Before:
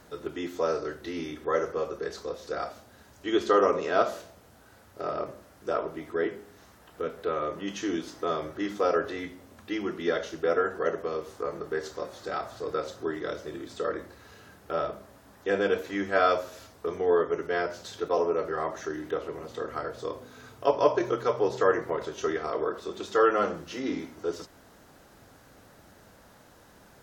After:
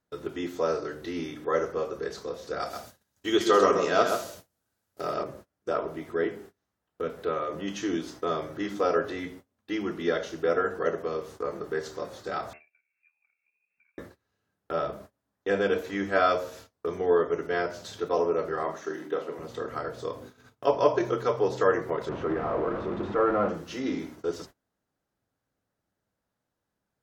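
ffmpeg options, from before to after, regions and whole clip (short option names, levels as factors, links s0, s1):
-filter_complex "[0:a]asettb=1/sr,asplit=3[s0][s1][s2];[s0]atrim=end=2.604[s3];[s1]atrim=start=2.6:end=5.23,asetpts=PTS-STARTPTS,afade=t=in:d=0.004:c=qsin,afade=t=out:st=2.626:d=0.004:c=qsin,highshelf=f=3900:g=11.5,aecho=1:1:131:0.501,atrim=end_sample=115983[s4];[s2]atrim=start=5.226[s5];[s3][s4]acrossfade=d=0.004:c1=hsin:c2=qsin[s6];[s6][s5]acrossfade=d=0.004:c1=qsin:c2=hsin,asettb=1/sr,asplit=3[s7][s8][s9];[s7]atrim=end=12.534[s10];[s8]atrim=start=12.53:end=13.98,asetpts=PTS-STARTPTS,afade=t=in:d=0.004:c=qsin,afade=t=out:st=1.446:d=0.004:c=qsin,lowpass=f=2400:t=q:w=0.5098,lowpass=f=2400:t=q:w=0.6013,lowpass=f=2400:t=q:w=0.9,lowpass=f=2400:t=q:w=2.563,afreqshift=-2800,equalizer=f=1100:t=o:w=1.3:g=-12,acompressor=threshold=0.00447:ratio=10:attack=3.2:release=140:knee=1:detection=peak[s11];[s9]atrim=start=13.976[s12];[s10][s11]acrossfade=d=0.004:c1=hsin:c2=qsin[s13];[s13][s12]acrossfade=d=0.004:c1=qsin:c2=hsin,asettb=1/sr,asplit=3[s14][s15][s16];[s14]atrim=end=18.634[s17];[s15]atrim=start=18.63:end=19.39,asetpts=PTS-STARTPTS,afade=t=in:d=0.004:c=qsin,afade=t=out:st=0.756:d=0.004:c=qsin,agate=range=0.0224:threshold=0.0126:ratio=3:release=100:detection=peak,highpass=f=170:w=0.5412,highpass=f=170:w=1.3066,asplit=2[s18][s19];[s19]adelay=44,volume=0.316[s20];[s18][s20]amix=inputs=2:normalize=0,atrim=end_sample=33516[s21];[s16]atrim=start=19.386[s22];[s17][s21]acrossfade=d=0.004:c1=hsin:c2=qsin[s23];[s23][s22]acrossfade=d=0.004:c1=qsin:c2=hsin,asettb=1/sr,asplit=3[s24][s25][s26];[s24]atrim=end=22.094[s27];[s25]atrim=start=22.09:end=23.49,asetpts=PTS-STARTPTS,afade=t=in:d=0.004:c=qsin,afade=t=out:st=1.396:d=0.004:c=qsin,aeval=exprs='val(0)+0.5*0.0531*sgn(val(0))':c=same,lowpass=1100,equalizer=f=420:w=7.1:g=-9[s28];[s26]atrim=start=23.486[s29];[s27][s28]acrossfade=d=0.004:c1=hsin:c2=qsin[s30];[s30][s29]acrossfade=d=0.004:c1=qsin:c2=hsin,bandreject=f=76:t=h:w=4,bandreject=f=152:t=h:w=4,bandreject=f=228:t=h:w=4,bandreject=f=304:t=h:w=4,bandreject=f=380:t=h:w=4,bandreject=f=456:t=h:w=4,bandreject=f=532:t=h:w=4,bandreject=f=608:t=h:w=4,bandreject=f=684:t=h:w=4,bandreject=f=760:t=h:w=4,bandreject=f=836:t=h:w=4,bandreject=f=912:t=h:w=4,bandreject=f=988:t=h:w=4,bandreject=f=1064:t=h:w=4,bandreject=f=1140:t=h:w=4,agate=range=0.0355:threshold=0.00501:ratio=16:detection=peak,equalizer=f=140:w=0.69:g=3.5"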